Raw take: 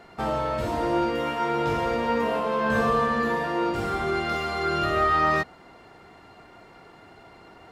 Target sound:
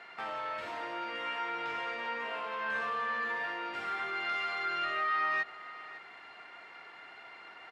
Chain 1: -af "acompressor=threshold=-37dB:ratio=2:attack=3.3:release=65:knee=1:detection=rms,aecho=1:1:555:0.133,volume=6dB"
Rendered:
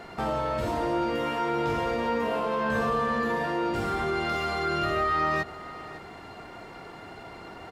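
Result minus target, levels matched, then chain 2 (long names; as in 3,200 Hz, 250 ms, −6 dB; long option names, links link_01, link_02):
2,000 Hz band −5.5 dB
-af "acompressor=threshold=-37dB:ratio=2:attack=3.3:release=65:knee=1:detection=rms,bandpass=frequency=2100:width_type=q:width=1.4:csg=0,aecho=1:1:555:0.133,volume=6dB"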